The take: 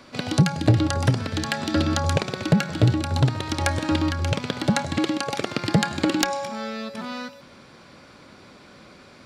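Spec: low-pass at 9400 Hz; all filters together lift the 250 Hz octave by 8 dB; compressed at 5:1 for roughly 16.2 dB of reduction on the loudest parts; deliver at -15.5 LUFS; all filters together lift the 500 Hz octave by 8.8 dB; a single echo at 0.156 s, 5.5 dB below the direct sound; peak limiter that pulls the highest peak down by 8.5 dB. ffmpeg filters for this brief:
-af "lowpass=9.4k,equalizer=f=250:t=o:g=8,equalizer=f=500:t=o:g=8.5,acompressor=threshold=-27dB:ratio=5,alimiter=limit=-19.5dB:level=0:latency=1,aecho=1:1:156:0.531,volume=16dB"

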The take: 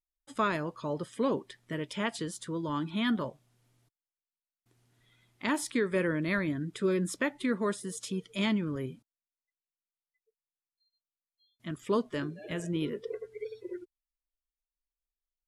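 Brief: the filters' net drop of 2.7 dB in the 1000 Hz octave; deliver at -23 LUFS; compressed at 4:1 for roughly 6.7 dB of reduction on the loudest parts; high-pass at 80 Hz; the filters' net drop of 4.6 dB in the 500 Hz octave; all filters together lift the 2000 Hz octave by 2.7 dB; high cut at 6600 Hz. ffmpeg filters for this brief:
-af "highpass=80,lowpass=6.6k,equalizer=f=500:t=o:g=-5.5,equalizer=f=1k:t=o:g=-3.5,equalizer=f=2k:t=o:g=4.5,acompressor=threshold=-33dB:ratio=4,volume=15.5dB"

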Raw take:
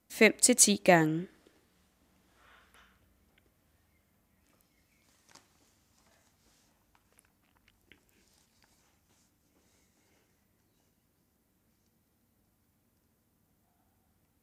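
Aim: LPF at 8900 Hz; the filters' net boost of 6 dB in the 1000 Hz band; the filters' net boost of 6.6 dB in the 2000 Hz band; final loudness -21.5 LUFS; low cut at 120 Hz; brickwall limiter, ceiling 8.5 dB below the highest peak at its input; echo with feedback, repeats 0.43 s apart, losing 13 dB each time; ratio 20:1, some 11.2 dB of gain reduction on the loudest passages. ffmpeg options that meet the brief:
-af "highpass=120,lowpass=8.9k,equalizer=f=1k:t=o:g=8.5,equalizer=f=2k:t=o:g=5.5,acompressor=threshold=-23dB:ratio=20,alimiter=limit=-19.5dB:level=0:latency=1,aecho=1:1:430|860|1290:0.224|0.0493|0.0108,volume=12dB"

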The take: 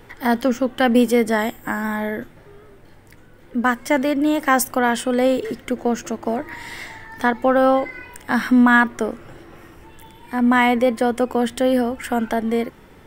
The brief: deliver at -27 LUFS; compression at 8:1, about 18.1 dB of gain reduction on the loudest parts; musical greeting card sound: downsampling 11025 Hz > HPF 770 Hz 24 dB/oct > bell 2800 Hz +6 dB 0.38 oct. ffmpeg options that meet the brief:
-af "acompressor=threshold=-30dB:ratio=8,aresample=11025,aresample=44100,highpass=f=770:w=0.5412,highpass=f=770:w=1.3066,equalizer=f=2.8k:t=o:w=0.38:g=6,volume=12dB"

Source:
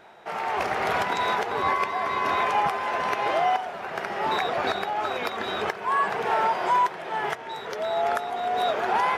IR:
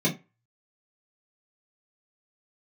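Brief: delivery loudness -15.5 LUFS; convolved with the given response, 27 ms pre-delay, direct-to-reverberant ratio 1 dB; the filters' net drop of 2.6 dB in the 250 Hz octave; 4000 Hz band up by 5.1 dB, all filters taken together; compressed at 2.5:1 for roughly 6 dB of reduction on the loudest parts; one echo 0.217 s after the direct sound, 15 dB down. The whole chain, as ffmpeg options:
-filter_complex "[0:a]equalizer=f=250:t=o:g=-4,equalizer=f=4k:t=o:g=6,acompressor=threshold=-28dB:ratio=2.5,aecho=1:1:217:0.178,asplit=2[a][b];[1:a]atrim=start_sample=2205,adelay=27[c];[b][c]afir=irnorm=-1:irlink=0,volume=-12.5dB[d];[a][d]amix=inputs=2:normalize=0,volume=12dB"

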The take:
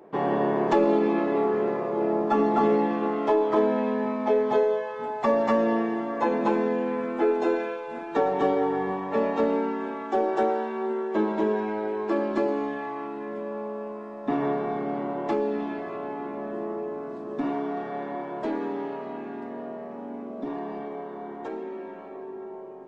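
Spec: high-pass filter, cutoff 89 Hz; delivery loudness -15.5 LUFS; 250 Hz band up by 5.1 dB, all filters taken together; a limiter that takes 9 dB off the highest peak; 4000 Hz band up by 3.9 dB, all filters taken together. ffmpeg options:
-af "highpass=89,equalizer=f=250:t=o:g=6.5,equalizer=f=4k:t=o:g=5,volume=11.5dB,alimiter=limit=-5.5dB:level=0:latency=1"

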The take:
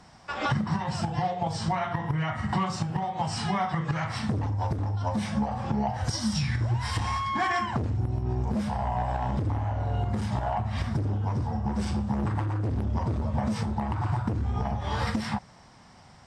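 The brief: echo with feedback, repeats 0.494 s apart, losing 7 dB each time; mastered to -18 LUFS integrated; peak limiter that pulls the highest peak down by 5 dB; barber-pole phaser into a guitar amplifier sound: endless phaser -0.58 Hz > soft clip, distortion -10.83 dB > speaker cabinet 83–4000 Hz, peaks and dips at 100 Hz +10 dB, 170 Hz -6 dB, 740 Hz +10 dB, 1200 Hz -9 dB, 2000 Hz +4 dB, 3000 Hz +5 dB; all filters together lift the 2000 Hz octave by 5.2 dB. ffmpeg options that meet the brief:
-filter_complex "[0:a]equalizer=f=2k:t=o:g=4,alimiter=limit=-20dB:level=0:latency=1,aecho=1:1:494|988|1482|1976|2470:0.447|0.201|0.0905|0.0407|0.0183,asplit=2[a][b];[b]afreqshift=-0.58[c];[a][c]amix=inputs=2:normalize=1,asoftclip=threshold=-31dB,highpass=83,equalizer=f=100:t=q:w=4:g=10,equalizer=f=170:t=q:w=4:g=-6,equalizer=f=740:t=q:w=4:g=10,equalizer=f=1.2k:t=q:w=4:g=-9,equalizer=f=2k:t=q:w=4:g=4,equalizer=f=3k:t=q:w=4:g=5,lowpass=f=4k:w=0.5412,lowpass=f=4k:w=1.3066,volume=15dB"

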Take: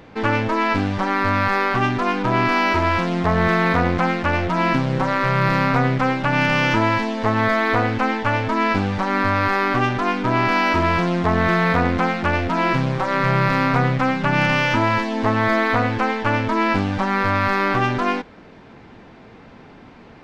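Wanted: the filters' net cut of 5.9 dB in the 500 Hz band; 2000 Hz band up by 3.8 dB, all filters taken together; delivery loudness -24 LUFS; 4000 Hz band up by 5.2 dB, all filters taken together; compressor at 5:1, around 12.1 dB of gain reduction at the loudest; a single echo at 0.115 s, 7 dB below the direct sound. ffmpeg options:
-af "equalizer=f=500:t=o:g=-8.5,equalizer=f=2k:t=o:g=4,equalizer=f=4k:t=o:g=5.5,acompressor=threshold=-27dB:ratio=5,aecho=1:1:115:0.447,volume=4dB"

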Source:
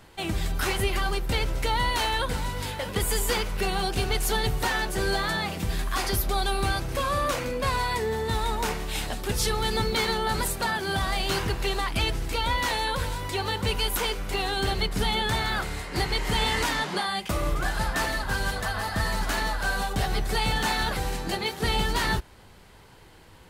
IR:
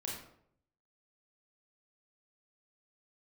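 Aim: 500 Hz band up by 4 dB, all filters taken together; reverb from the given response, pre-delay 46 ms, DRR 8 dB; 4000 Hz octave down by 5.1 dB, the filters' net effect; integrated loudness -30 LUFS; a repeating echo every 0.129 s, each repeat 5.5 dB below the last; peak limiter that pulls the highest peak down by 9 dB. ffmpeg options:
-filter_complex "[0:a]equalizer=f=500:t=o:g=5,equalizer=f=4k:t=o:g=-6.5,alimiter=limit=-20.5dB:level=0:latency=1,aecho=1:1:129|258|387|516|645|774|903:0.531|0.281|0.149|0.079|0.0419|0.0222|0.0118,asplit=2[a][b];[1:a]atrim=start_sample=2205,adelay=46[c];[b][c]afir=irnorm=-1:irlink=0,volume=-8.5dB[d];[a][d]amix=inputs=2:normalize=0,volume=-2dB"

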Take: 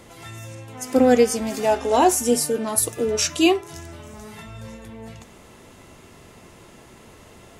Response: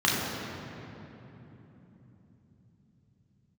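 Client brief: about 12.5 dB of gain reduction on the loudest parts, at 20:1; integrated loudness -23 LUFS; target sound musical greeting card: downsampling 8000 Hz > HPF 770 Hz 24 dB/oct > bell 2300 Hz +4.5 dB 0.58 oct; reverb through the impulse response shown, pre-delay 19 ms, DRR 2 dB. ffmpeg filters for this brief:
-filter_complex "[0:a]acompressor=threshold=-23dB:ratio=20,asplit=2[a][b];[1:a]atrim=start_sample=2205,adelay=19[c];[b][c]afir=irnorm=-1:irlink=0,volume=-17.5dB[d];[a][d]amix=inputs=2:normalize=0,aresample=8000,aresample=44100,highpass=f=770:w=0.5412,highpass=f=770:w=1.3066,equalizer=f=2.3k:t=o:w=0.58:g=4.5,volume=12.5dB"

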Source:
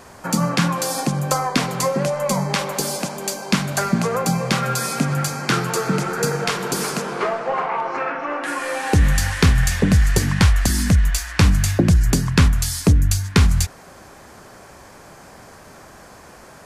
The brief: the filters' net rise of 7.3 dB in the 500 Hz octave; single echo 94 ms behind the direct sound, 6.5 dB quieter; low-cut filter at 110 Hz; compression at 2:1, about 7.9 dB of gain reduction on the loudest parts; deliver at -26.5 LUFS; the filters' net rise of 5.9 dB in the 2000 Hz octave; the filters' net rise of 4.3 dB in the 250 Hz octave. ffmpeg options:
-af "highpass=110,equalizer=f=250:t=o:g=5,equalizer=f=500:t=o:g=7,equalizer=f=2k:t=o:g=7,acompressor=threshold=-23dB:ratio=2,aecho=1:1:94:0.473,volume=-4.5dB"

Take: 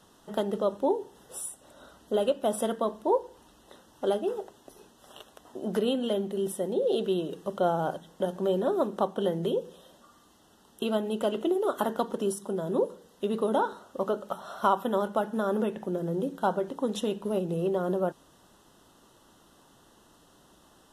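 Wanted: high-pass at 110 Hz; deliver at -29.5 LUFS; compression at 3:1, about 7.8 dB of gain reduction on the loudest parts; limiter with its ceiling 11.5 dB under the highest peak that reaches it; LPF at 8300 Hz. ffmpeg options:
-af "highpass=110,lowpass=8.3k,acompressor=threshold=-31dB:ratio=3,volume=9.5dB,alimiter=limit=-19.5dB:level=0:latency=1"

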